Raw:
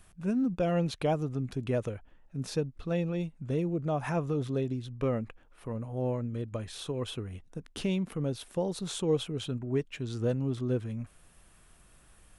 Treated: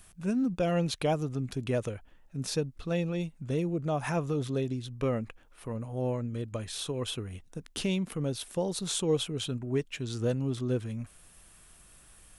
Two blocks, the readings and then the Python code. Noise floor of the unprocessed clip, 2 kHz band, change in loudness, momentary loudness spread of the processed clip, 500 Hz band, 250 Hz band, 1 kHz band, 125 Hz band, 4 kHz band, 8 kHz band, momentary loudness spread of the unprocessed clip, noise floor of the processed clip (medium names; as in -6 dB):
-60 dBFS, +2.5 dB, +0.5 dB, 10 LU, 0.0 dB, 0.0 dB, +0.5 dB, 0.0 dB, +4.5 dB, +7.0 dB, 10 LU, -57 dBFS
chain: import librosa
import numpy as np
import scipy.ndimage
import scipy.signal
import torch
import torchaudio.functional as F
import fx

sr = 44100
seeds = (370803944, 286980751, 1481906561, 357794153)

y = fx.high_shelf(x, sr, hz=3000.0, db=8.0)